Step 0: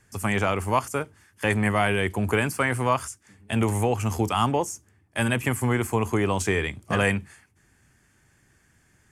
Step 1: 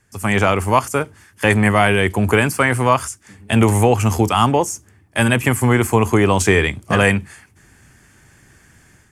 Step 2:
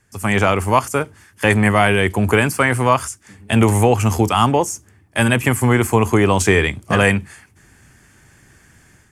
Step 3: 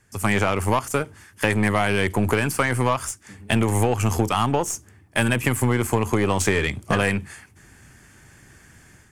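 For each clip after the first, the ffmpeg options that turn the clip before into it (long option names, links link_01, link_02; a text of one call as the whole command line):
ffmpeg -i in.wav -af "dynaudnorm=framelen=100:gausssize=5:maxgain=12dB" out.wav
ffmpeg -i in.wav -af anull out.wav
ffmpeg -i in.wav -af "acompressor=threshold=-17dB:ratio=6,aeval=exprs='0.501*(cos(1*acos(clip(val(0)/0.501,-1,1)))-cos(1*PI/2))+0.0251*(cos(8*acos(clip(val(0)/0.501,-1,1)))-cos(8*PI/2))':channel_layout=same" out.wav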